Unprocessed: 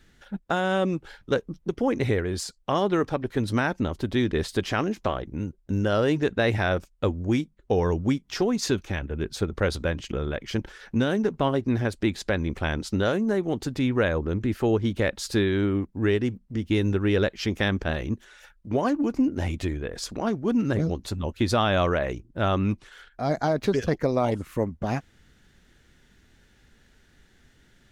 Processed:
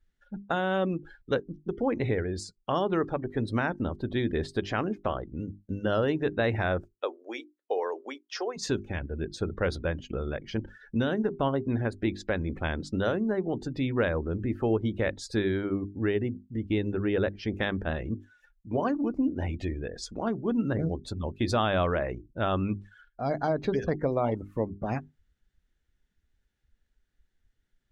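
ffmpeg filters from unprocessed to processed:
ffmpeg -i in.wav -filter_complex "[0:a]asplit=3[link_01][link_02][link_03];[link_01]afade=type=out:start_time=6.93:duration=0.02[link_04];[link_02]highpass=frequency=430:width=0.5412,highpass=frequency=430:width=1.3066,afade=type=in:start_time=6.93:duration=0.02,afade=type=out:start_time=8.56:duration=0.02[link_05];[link_03]afade=type=in:start_time=8.56:duration=0.02[link_06];[link_04][link_05][link_06]amix=inputs=3:normalize=0,asettb=1/sr,asplit=3[link_07][link_08][link_09];[link_07]atrim=end=15.964[link_10];[link_08]atrim=start=15.96:end=17.55,asetpts=PTS-STARTPTS,afade=type=in:duration=0.004:curve=qsin,afade=type=out:start_time=1.586:duration=0.004:curve=qsin,highshelf=frequency=3800:gain=-6.5[link_11];[link_09]atrim=start=17.546[link_12];[link_10][link_11]acrossfade=duration=0.004:curve1=hsin:curve2=qsin[link_13];[link_13][link_12]acrossfade=duration=0.004:curve1=qsin:curve2=hsin,bandreject=frequency=50:width_type=h:width=6,bandreject=frequency=100:width_type=h:width=6,bandreject=frequency=150:width_type=h:width=6,bandreject=frequency=200:width_type=h:width=6,bandreject=frequency=250:width_type=h:width=6,bandreject=frequency=300:width_type=h:width=6,bandreject=frequency=350:width_type=h:width=6,bandreject=frequency=400:width_type=h:width=6,afftdn=noise_reduction=20:noise_floor=-41,adynamicequalizer=threshold=0.00708:dfrequency=2200:dqfactor=0.7:tfrequency=2200:tqfactor=0.7:attack=5:release=100:ratio=0.375:range=2.5:mode=cutabove:tftype=highshelf,volume=-3dB" out.wav

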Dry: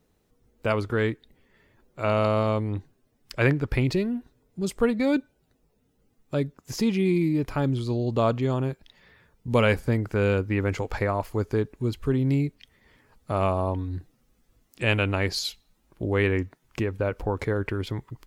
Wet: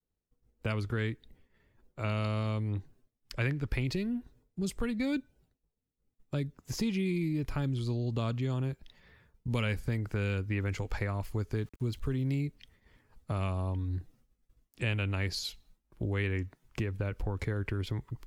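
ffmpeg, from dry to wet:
ffmpeg -i in.wav -filter_complex "[0:a]asettb=1/sr,asplit=3[link_01][link_02][link_03];[link_01]atrim=end=11.544[link_04];[link_02]atrim=start=11.54:end=12.41,asetpts=PTS-STARTPTS,afade=type=in:duration=0.004:curve=qsin,afade=type=out:start_time=0.866:duration=0.004:curve=qsin,aeval=exprs='val(0)*gte(abs(val(0)),0.00299)':channel_layout=same[link_05];[link_03]atrim=start=12.406[link_06];[link_04][link_05]acrossfade=duration=0.004:curve1=hsin:curve2=qsin[link_07];[link_07][link_06]acrossfade=duration=0.004:curve1=qsin:curve2=hsin,agate=range=-33dB:threshold=-55dB:ratio=3:detection=peak,lowshelf=frequency=120:gain=9.5,acrossover=split=310|1600[link_08][link_09][link_10];[link_08]acompressor=threshold=-26dB:ratio=4[link_11];[link_09]acompressor=threshold=-37dB:ratio=4[link_12];[link_10]acompressor=threshold=-29dB:ratio=4[link_13];[link_11][link_12][link_13]amix=inputs=3:normalize=0,volume=-4.5dB" out.wav

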